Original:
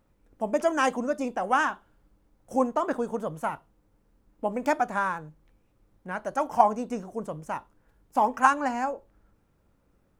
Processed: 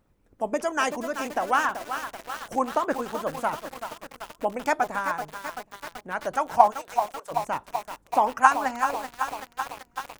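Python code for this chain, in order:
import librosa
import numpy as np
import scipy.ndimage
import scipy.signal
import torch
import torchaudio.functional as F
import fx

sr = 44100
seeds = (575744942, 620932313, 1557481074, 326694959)

p1 = fx.hpss(x, sr, part='percussive', gain_db=9)
p2 = fx.bessel_highpass(p1, sr, hz=830.0, order=8, at=(6.7, 7.3), fade=0.02)
p3 = p2 + fx.echo_feedback(p2, sr, ms=386, feedback_pct=57, wet_db=-24.0, dry=0)
p4 = fx.echo_crushed(p3, sr, ms=383, feedback_pct=80, bits=5, wet_db=-8.0)
y = F.gain(torch.from_numpy(p4), -5.0).numpy()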